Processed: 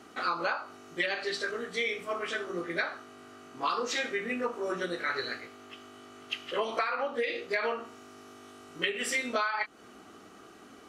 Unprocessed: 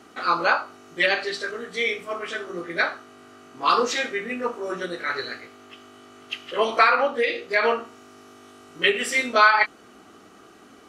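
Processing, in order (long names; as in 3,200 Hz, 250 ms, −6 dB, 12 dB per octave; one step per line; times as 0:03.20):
downward compressor 12 to 1, threshold −24 dBFS, peak gain reduction 14 dB
level −2.5 dB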